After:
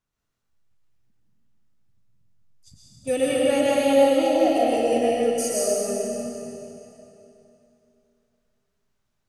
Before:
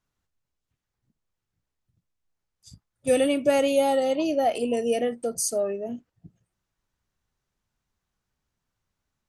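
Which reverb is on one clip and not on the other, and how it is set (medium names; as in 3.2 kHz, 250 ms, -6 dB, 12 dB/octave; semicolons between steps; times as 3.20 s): algorithmic reverb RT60 3 s, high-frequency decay 0.95×, pre-delay 75 ms, DRR -6 dB; trim -3.5 dB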